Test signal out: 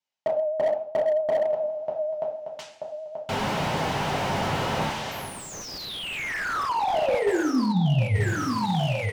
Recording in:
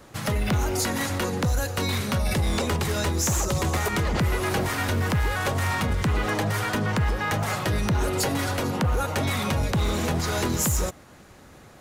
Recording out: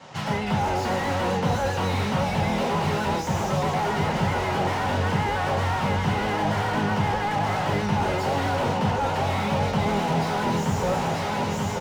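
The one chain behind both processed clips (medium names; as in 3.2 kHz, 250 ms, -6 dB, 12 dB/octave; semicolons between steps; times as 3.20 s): cabinet simulation 130–6600 Hz, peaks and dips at 370 Hz -6 dB, 830 Hz +10 dB, 2.9 kHz +5 dB; level rider gain up to 12.5 dB; de-hum 218.5 Hz, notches 13; on a send: feedback delay 933 ms, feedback 53%, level -16.5 dB; on the sum: two-slope reverb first 0.46 s, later 1.8 s, from -18 dB, DRR -4 dB; vibrato 7.7 Hz 43 cents; band-stop 1.2 kHz, Q 24; reverse; compression 8:1, threshold -20 dBFS; reverse; slew-rate limiter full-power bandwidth 69 Hz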